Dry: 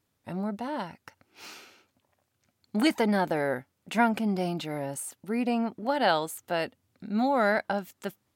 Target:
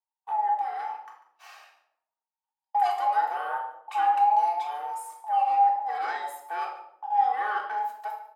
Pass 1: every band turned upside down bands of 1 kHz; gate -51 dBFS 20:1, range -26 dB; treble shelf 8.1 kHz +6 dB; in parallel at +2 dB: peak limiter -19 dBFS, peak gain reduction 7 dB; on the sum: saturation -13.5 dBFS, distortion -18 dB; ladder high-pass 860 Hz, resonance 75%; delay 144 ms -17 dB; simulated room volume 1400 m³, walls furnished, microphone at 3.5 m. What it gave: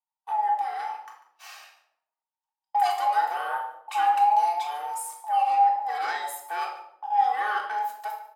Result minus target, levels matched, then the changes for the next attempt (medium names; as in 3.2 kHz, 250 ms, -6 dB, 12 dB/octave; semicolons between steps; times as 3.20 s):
4 kHz band +5.5 dB
add after ladder high-pass: treble shelf 2.7 kHz -10.5 dB